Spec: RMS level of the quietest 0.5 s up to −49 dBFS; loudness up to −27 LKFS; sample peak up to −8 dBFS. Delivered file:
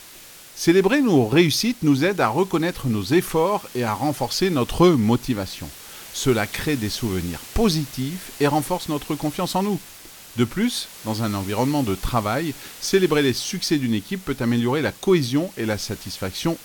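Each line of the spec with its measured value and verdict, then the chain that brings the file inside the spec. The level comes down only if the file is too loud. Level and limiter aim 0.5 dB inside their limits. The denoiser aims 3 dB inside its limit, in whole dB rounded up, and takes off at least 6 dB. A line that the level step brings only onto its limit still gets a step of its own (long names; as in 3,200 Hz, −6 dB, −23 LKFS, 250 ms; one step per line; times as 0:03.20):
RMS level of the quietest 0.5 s −44 dBFS: out of spec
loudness −22.0 LKFS: out of spec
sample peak −3.5 dBFS: out of spec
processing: level −5.5 dB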